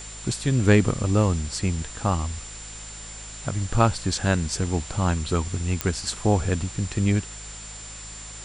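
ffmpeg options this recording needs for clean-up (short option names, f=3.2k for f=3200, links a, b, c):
-af "adeclick=t=4,bandreject=f=53.8:t=h:w=4,bandreject=f=107.6:t=h:w=4,bandreject=f=161.4:t=h:w=4,bandreject=f=215.2:t=h:w=4,bandreject=f=7.2k:w=30,afftdn=nr=30:nf=-39"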